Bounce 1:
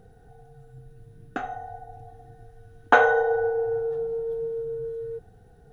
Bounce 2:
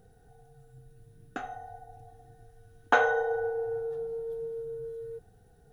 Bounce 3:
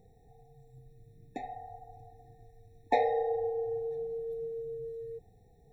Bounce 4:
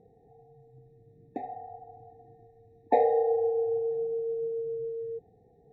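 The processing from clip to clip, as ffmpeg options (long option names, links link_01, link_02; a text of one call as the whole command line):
ffmpeg -i in.wav -af "highshelf=frequency=4500:gain=9.5,volume=-6.5dB" out.wav
ffmpeg -i in.wav -af "afftfilt=real='re*eq(mod(floor(b*sr/1024/870),2),0)':imag='im*eq(mod(floor(b*sr/1024/870),2),0)':win_size=1024:overlap=0.75,volume=-1.5dB" out.wav
ffmpeg -i in.wav -af "bandpass=frequency=390:width_type=q:width=0.76:csg=0,volume=6dB" out.wav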